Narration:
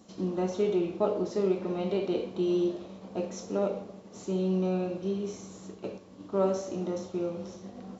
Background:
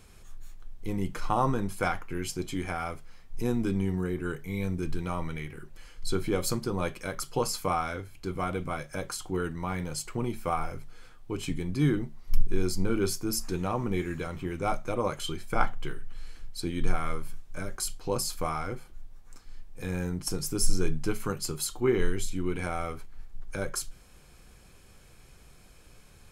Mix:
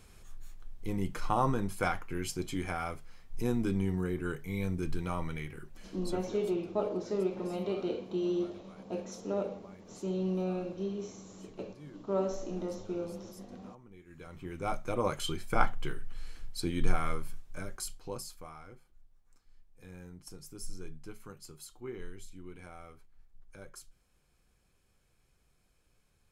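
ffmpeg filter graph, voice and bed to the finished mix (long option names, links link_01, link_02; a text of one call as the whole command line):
ffmpeg -i stem1.wav -i stem2.wav -filter_complex "[0:a]adelay=5750,volume=-4.5dB[link_01];[1:a]volume=21.5dB,afade=type=out:start_time=5.68:duration=0.7:silence=0.0749894,afade=type=in:start_time=14.05:duration=1.07:silence=0.0630957,afade=type=out:start_time=17.02:duration=1.41:silence=0.158489[link_02];[link_01][link_02]amix=inputs=2:normalize=0" out.wav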